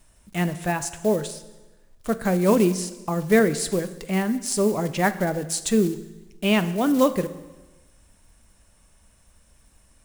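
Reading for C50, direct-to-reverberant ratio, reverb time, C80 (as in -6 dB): 14.0 dB, 11.5 dB, 1.2 s, 15.5 dB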